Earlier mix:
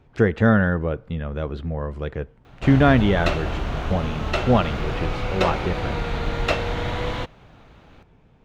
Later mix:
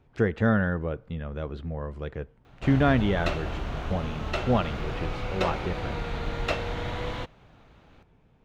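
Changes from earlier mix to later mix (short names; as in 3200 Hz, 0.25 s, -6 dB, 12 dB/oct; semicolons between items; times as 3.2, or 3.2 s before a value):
speech -6.0 dB; background -6.0 dB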